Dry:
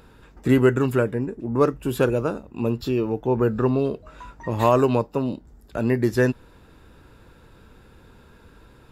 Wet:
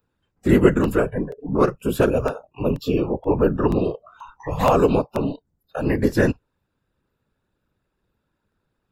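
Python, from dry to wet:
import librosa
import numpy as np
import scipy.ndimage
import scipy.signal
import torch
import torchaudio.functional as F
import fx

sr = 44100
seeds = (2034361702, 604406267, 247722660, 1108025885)

y = fx.whisperise(x, sr, seeds[0])
y = fx.noise_reduce_blind(y, sr, reduce_db=25)
y = fx.buffer_crackle(y, sr, first_s=0.84, period_s=0.48, block=64, kind='repeat')
y = y * librosa.db_to_amplitude(1.5)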